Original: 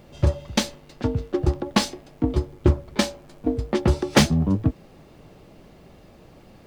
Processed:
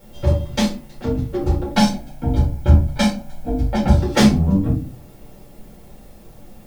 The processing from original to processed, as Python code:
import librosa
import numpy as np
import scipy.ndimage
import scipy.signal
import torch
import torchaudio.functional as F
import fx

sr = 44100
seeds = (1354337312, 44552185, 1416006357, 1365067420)

y = fx.comb(x, sr, ms=1.3, depth=0.74, at=(1.76, 3.95))
y = fx.dmg_noise_colour(y, sr, seeds[0], colour='blue', level_db=-56.0)
y = fx.room_shoebox(y, sr, seeds[1], volume_m3=150.0, walls='furnished', distance_m=4.5)
y = y * librosa.db_to_amplitude(-8.0)